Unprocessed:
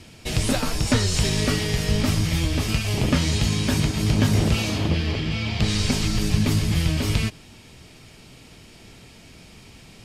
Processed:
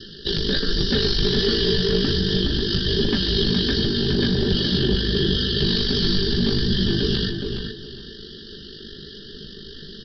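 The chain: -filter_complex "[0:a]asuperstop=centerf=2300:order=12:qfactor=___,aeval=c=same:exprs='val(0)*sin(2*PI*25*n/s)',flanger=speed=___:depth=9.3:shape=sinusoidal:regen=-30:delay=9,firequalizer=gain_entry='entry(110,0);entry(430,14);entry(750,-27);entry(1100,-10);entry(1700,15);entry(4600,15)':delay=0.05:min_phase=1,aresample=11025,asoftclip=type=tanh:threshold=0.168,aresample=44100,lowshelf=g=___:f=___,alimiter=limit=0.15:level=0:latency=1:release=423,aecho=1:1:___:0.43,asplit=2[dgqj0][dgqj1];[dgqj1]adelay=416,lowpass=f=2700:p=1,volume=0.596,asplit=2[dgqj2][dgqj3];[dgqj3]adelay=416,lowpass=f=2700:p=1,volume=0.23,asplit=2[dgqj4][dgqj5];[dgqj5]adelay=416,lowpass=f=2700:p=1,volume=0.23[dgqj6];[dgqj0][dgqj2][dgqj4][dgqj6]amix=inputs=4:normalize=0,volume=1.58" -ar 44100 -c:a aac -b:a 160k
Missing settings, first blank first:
1.9, 1.3, 8.5, 94, 5.1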